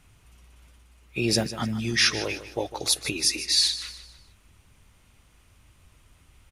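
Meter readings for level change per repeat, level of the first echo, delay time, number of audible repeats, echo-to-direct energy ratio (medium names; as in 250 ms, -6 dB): -8.5 dB, -13.5 dB, 152 ms, 3, -13.0 dB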